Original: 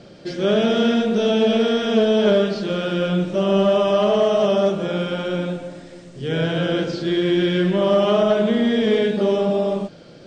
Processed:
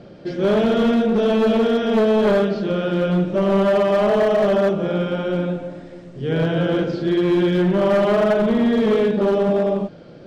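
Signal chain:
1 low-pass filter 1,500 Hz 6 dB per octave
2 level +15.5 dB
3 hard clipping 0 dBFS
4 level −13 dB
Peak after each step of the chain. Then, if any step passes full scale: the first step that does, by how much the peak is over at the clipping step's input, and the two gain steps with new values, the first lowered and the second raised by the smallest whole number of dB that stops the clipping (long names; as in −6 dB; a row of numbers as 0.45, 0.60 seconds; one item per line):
−8.0, +7.5, 0.0, −13.0 dBFS
step 2, 7.5 dB
step 2 +7.5 dB, step 4 −5 dB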